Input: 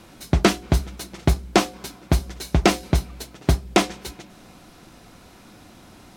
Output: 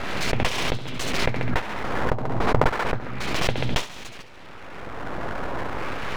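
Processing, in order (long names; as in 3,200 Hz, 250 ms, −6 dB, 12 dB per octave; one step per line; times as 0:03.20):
camcorder AGC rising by 19 dB per second
0:02.36–0:02.85: transient designer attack +4 dB, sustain −11 dB
auto-filter low-pass sine 0.33 Hz 820–3,300 Hz
full-wave rectification
on a send: feedback echo with a high-pass in the loop 68 ms, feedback 40%, high-pass 490 Hz, level −13 dB
on the sum: background raised ahead of every attack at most 26 dB per second
level −8 dB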